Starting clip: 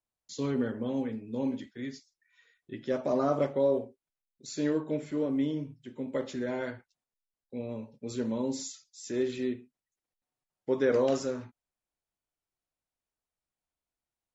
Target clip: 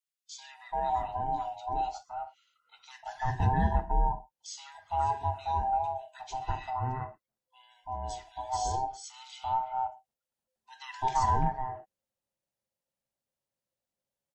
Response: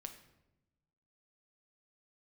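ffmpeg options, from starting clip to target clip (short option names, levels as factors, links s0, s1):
-filter_complex "[0:a]afftfilt=real='real(if(lt(b,1008),b+24*(1-2*mod(floor(b/24),2)),b),0)':imag='imag(if(lt(b,1008),b+24*(1-2*mod(floor(b/24),2)),b),0)':win_size=2048:overlap=0.75,equalizer=f=120:t=o:w=1.9:g=5,acrossover=split=1800[s0][s1];[s0]adelay=340[s2];[s2][s1]amix=inputs=2:normalize=0"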